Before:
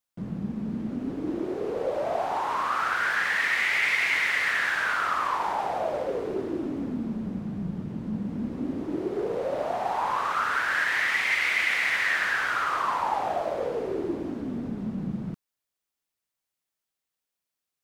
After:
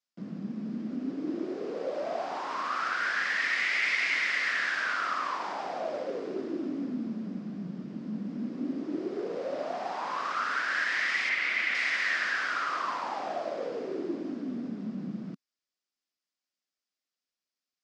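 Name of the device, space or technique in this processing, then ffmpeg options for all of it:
television speaker: -filter_complex "[0:a]highpass=f=180:w=0.5412,highpass=f=180:w=1.3066,equalizer=f=270:t=q:w=4:g=3,equalizer=f=440:t=q:w=4:g=-3,equalizer=f=880:t=q:w=4:g=-7,equalizer=f=5000:t=q:w=4:g=7,lowpass=f=7200:w=0.5412,lowpass=f=7200:w=1.3066,asettb=1/sr,asplit=3[s0][s1][s2];[s0]atrim=end=11.294[s3];[s1]atrim=start=11.29:end=11.75,asetpts=PTS-STARTPTS,afade=t=in:d=0.004:c=qsin,afade=t=out:st=0.456:d=0.004:c=qsin,bass=f=250:g=4,treble=f=4000:g=-8[s4];[s2]atrim=start=11.746[s5];[s3][s4]acrossfade=d=0.004:c1=hsin:c2=qsin[s6];[s6][s5]acrossfade=d=0.004:c1=qsin:c2=hsin,volume=0.668"

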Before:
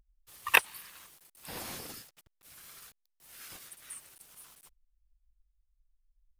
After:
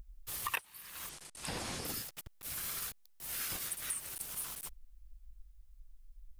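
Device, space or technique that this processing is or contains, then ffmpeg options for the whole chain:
ASMR close-microphone chain: -filter_complex "[0:a]lowshelf=f=160:g=6,acompressor=threshold=0.00398:ratio=6,highshelf=f=10000:g=5,asettb=1/sr,asplit=3[s0][s1][s2];[s0]atrim=end=1.094[s3];[s1]atrim=start=1.09:end=1.85,asetpts=PTS-STARTPTS,afade=t=in:d=0.004:c=qsin,afade=t=out:st=0.756:d=0.004:c=qsin,lowpass=f=9100:w=0.5412,lowpass=f=9100:w=1.3066[s4];[s2]atrim=start=1.846[s5];[s3][s4]acrossfade=d=0.004:c1=hsin:c2=qsin[s6];[s6][s5]acrossfade=d=0.004:c1=qsin:c2=hsin,volume=3.55"

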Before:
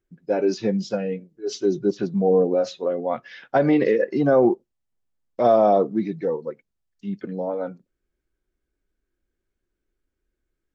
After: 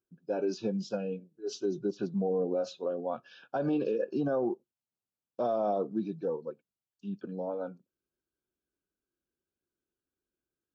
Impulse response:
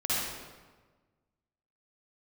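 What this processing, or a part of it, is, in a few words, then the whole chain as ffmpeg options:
PA system with an anti-feedback notch: -af "highpass=130,asuperstop=centerf=2000:order=8:qfactor=2.9,alimiter=limit=0.211:level=0:latency=1:release=118,lowshelf=f=110:g=4.5,volume=0.376"

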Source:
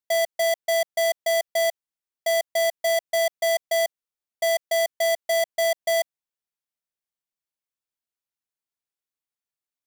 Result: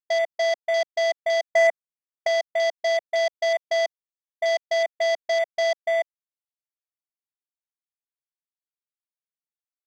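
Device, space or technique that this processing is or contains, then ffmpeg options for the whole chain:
over-cleaned archive recording: -filter_complex "[0:a]highpass=140,lowpass=7600,afwtdn=0.02,asettb=1/sr,asplit=3[s0][s1][s2];[s0]atrim=end=1.424[s3];[s1]atrim=start=1.42:end=2.27,asetpts=PTS-STARTPTS,afade=t=in:d=0.004:c=qsin,afade=t=out:st=0.846:d=0.004:c=qsin,equalizer=f=125:t=o:w=1:g=6,equalizer=f=250:t=o:w=1:g=4,equalizer=f=500:t=o:w=1:g=3,equalizer=f=1000:t=o:w=1:g=5,equalizer=f=2000:t=o:w=1:g=8,equalizer=f=4000:t=o:w=1:g=-11,equalizer=f=8000:t=o:w=1:g=9[s4];[s2]atrim=start=2.266[s5];[s3][s4]acrossfade=d=0.004:c1=hsin:c2=qsin[s6];[s6][s5]acrossfade=d=0.004:c1=qsin:c2=hsin"

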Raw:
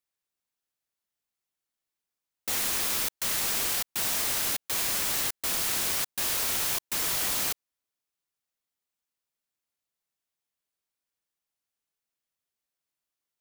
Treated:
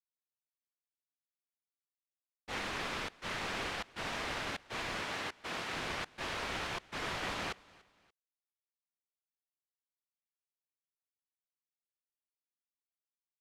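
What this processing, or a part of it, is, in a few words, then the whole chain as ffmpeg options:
hearing-loss simulation: -filter_complex "[0:a]asettb=1/sr,asplit=3[s0][s1][s2];[s0]atrim=end=5.014[s3];[s1]atrim=start=5.01:end=5.73,asetpts=PTS-STARTPTS,afade=t=in:d=0.004:c=qsin,afade=t=out:st=0.716:d=0.004:c=qsin,highpass=f=150:p=1[s4];[s2]atrim=start=5.726[s5];[s3][s4]acrossfade=d=0.004:c1=hsin:c2=qsin[s6];[s6][s5]acrossfade=d=0.004:c1=qsin:c2=hsin,lowpass=2500,agate=range=0.0224:threshold=0.02:ratio=3:detection=peak,aecho=1:1:290|580:0.0668|0.0241,volume=1.12"

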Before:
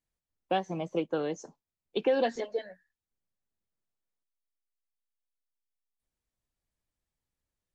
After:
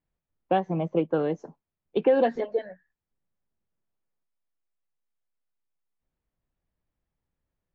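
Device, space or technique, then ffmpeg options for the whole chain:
phone in a pocket: -af "lowpass=3200,equalizer=f=160:t=o:w=0.3:g=4,highshelf=f=2200:g=-10,volume=2"

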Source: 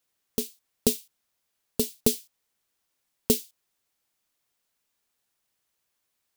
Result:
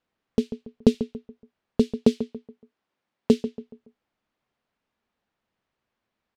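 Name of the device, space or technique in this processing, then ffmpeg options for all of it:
phone in a pocket: -filter_complex "[0:a]asettb=1/sr,asplit=3[s0][s1][s2];[s0]atrim=end=1.994[s3];[s1]atrim=start=1.99:end=3.33,asetpts=PTS-STARTPTS,afade=t=in:d=0.004:c=qsin,afade=t=out:st=1.336:d=0.004:c=qsin,highpass=f=190:p=1[s4];[s2]atrim=start=3.326[s5];[s3][s4]acrossfade=d=0.004:c1=hsin:c2=qsin[s6];[s6][s5]acrossfade=d=0.004:c1=qsin:c2=hsin,lowpass=3800,equalizer=f=220:t=o:w=0.32:g=6,highshelf=f=2200:g=-11,asplit=2[s7][s8];[s8]adelay=141,lowpass=f=2000:p=1,volume=0.266,asplit=2[s9][s10];[s10]adelay=141,lowpass=f=2000:p=1,volume=0.38,asplit=2[s11][s12];[s12]adelay=141,lowpass=f=2000:p=1,volume=0.38,asplit=2[s13][s14];[s14]adelay=141,lowpass=f=2000:p=1,volume=0.38[s15];[s7][s9][s11][s13][s15]amix=inputs=5:normalize=0,volume=2"

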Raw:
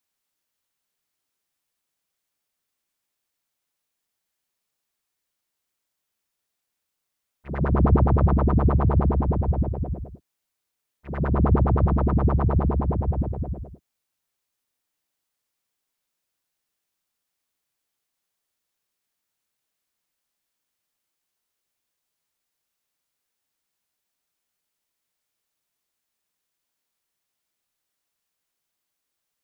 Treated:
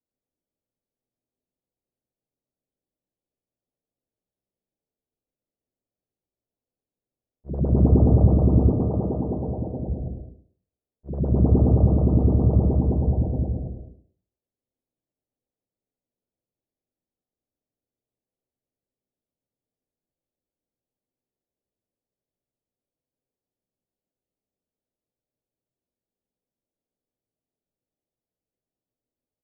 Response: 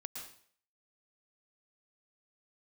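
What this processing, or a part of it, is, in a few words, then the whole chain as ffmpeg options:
next room: -filter_complex "[0:a]asettb=1/sr,asplit=3[s0][s1][s2];[s0]atrim=end=8.704[s3];[s1]atrim=start=8.7:end=9.87,asetpts=PTS-STARTPTS,afade=t=in:d=0.004:c=qsin,afade=t=out:st=1.166:d=0.004:c=qsin,highpass=f=260:p=1[s4];[s2]atrim=start=9.866[s5];[s3][s4]acrossfade=d=0.004:c1=hsin:c2=qsin[s6];[s6][s5]acrossfade=d=0.004:c1=qsin:c2=hsin,lowpass=f=590:w=0.5412,lowpass=f=590:w=1.3066[s7];[1:a]atrim=start_sample=2205[s8];[s7][s8]afir=irnorm=-1:irlink=0,asplit=2[s9][s10];[s10]adelay=16,volume=0.224[s11];[s9][s11]amix=inputs=2:normalize=0,volume=1.88"

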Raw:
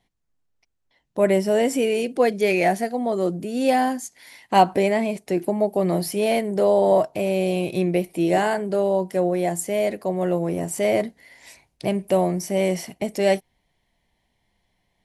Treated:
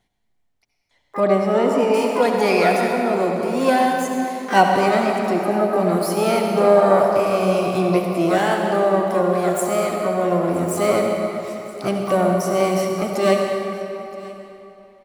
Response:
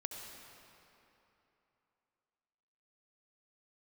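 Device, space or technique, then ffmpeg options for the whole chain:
shimmer-style reverb: -filter_complex "[0:a]asplit=2[s0][s1];[s1]asetrate=88200,aresample=44100,atempo=0.5,volume=0.355[s2];[s0][s2]amix=inputs=2:normalize=0[s3];[1:a]atrim=start_sample=2205[s4];[s3][s4]afir=irnorm=-1:irlink=0,asettb=1/sr,asplit=3[s5][s6][s7];[s5]atrim=end=1.204[s8];[s6]atrim=start=1.2:end=1.94,asetpts=PTS-STARTPTS,afade=t=in:d=0.004:c=qsin,afade=t=out:st=0.736:d=0.004:c=qsin,lowpass=f=2000:p=1[s9];[s7]atrim=start=1.936[s10];[s8][s9]acrossfade=d=0.004:c1=hsin:c2=qsin[s11];[s11][s10]acrossfade=d=0.004:c1=qsin:c2=hsin,aecho=1:1:972:0.0944,volume=1.5"

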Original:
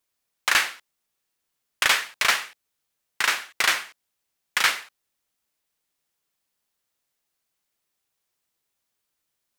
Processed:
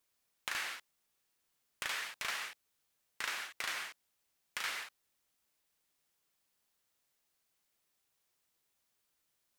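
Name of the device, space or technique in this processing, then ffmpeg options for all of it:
de-esser from a sidechain: -filter_complex "[0:a]asplit=2[s0][s1];[s1]highpass=f=6500:w=0.5412,highpass=f=6500:w=1.3066,apad=whole_len=422509[s2];[s0][s2]sidechaincompress=threshold=0.00355:ratio=4:attack=3.4:release=39,volume=0.891"

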